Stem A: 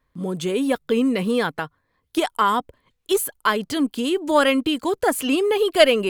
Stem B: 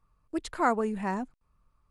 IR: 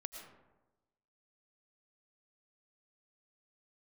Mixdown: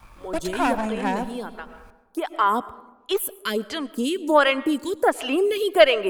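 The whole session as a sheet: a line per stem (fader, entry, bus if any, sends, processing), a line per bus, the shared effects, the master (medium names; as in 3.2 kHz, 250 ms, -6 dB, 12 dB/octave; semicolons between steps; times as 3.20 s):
0.0 dB, 0.00 s, send -9.5 dB, lamp-driven phase shifter 1.4 Hz; auto duck -16 dB, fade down 1.60 s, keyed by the second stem
+2.5 dB, 0.00 s, send -3.5 dB, comb filter that takes the minimum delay 1.2 ms; three bands compressed up and down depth 70%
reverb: on, RT60 1.1 s, pre-delay 70 ms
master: peaking EQ 140 Hz -9 dB 0.64 oct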